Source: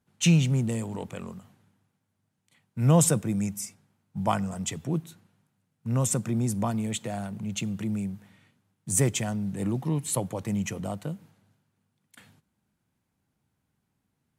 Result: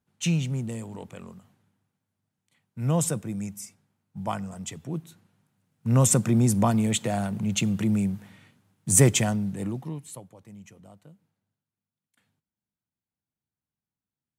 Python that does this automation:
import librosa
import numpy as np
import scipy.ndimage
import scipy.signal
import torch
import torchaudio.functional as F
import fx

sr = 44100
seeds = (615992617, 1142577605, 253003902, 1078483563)

y = fx.gain(x, sr, db=fx.line((4.88, -4.5), (5.99, 6.0), (9.23, 6.0), (9.87, -6.0), (10.3, -17.5)))